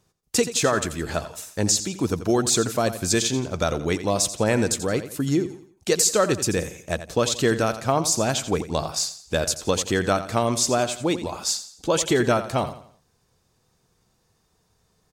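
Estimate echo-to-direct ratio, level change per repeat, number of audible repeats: −12.0 dB, −8.5 dB, 3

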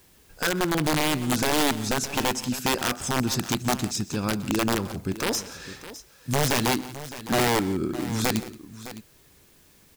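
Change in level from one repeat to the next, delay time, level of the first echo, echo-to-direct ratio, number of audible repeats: repeats not evenly spaced, 127 ms, −20.0 dB, −12.5 dB, 3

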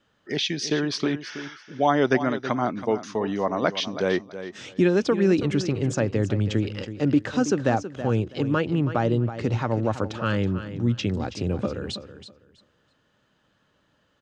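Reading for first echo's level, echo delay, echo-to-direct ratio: −12.0 dB, 325 ms, −12.0 dB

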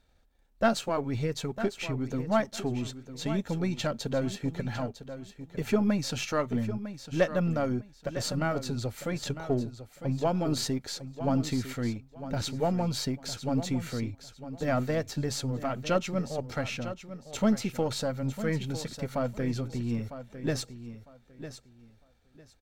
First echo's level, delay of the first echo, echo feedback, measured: −12.0 dB, 953 ms, 22%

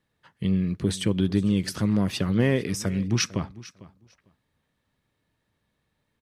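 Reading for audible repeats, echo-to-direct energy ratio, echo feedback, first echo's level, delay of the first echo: 2, −19.0 dB, 16%, −19.0 dB, 450 ms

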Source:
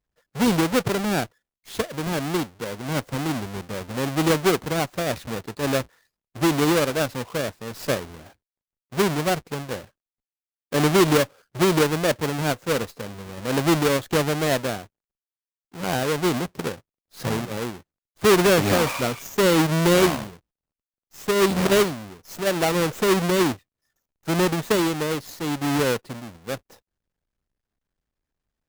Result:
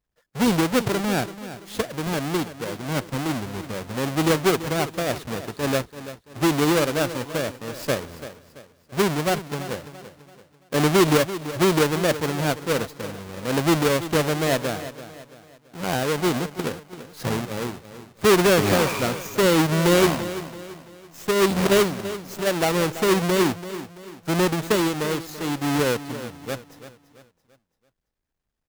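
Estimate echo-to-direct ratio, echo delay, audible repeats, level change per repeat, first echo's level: −13.0 dB, 336 ms, 3, −8.0 dB, −13.5 dB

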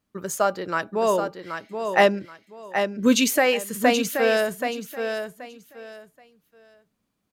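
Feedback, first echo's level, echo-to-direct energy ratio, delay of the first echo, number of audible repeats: 22%, −7.0 dB, −7.0 dB, 778 ms, 3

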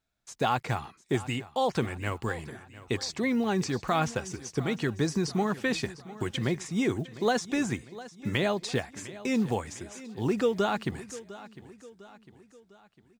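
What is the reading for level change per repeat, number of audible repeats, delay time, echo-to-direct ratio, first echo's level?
−6.5 dB, 3, 703 ms, −16.0 dB, −17.0 dB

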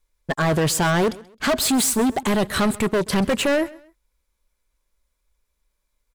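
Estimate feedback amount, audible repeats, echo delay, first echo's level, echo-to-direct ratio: 30%, 2, 132 ms, −21.0 dB, −20.5 dB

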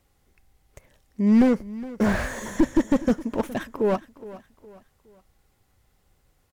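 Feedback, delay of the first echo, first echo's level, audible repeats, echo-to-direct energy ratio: 40%, 415 ms, −17.5 dB, 3, −17.0 dB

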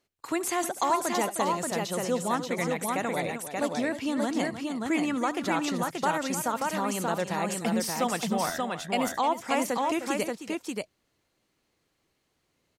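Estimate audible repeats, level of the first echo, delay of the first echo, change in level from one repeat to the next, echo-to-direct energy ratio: 3, −18.0 dB, 73 ms, repeats not evenly spaced, −2.0 dB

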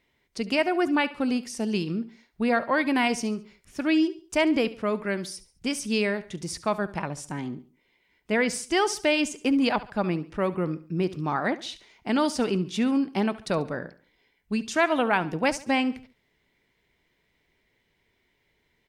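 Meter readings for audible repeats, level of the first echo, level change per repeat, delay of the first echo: 3, −17.0 dB, −8.0 dB, 70 ms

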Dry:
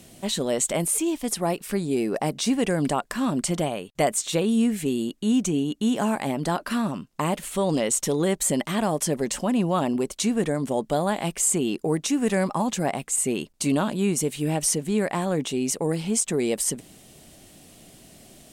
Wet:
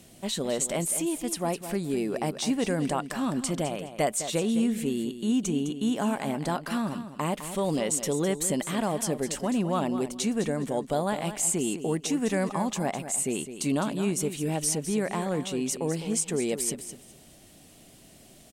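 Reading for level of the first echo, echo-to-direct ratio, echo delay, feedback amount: −11.0 dB, −11.0 dB, 208 ms, 19%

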